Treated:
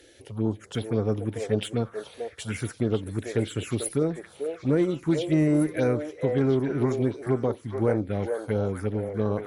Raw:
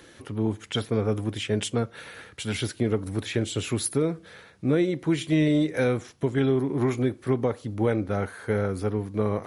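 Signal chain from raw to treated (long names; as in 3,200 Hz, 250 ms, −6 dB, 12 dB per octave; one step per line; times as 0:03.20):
harmonic generator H 5 −32 dB, 7 −28 dB, 8 −40 dB, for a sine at −11 dBFS
phaser swept by the level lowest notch 170 Hz, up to 3,500 Hz, full sweep at −18.5 dBFS
echo through a band-pass that steps 440 ms, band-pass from 580 Hz, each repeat 1.4 octaves, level −2.5 dB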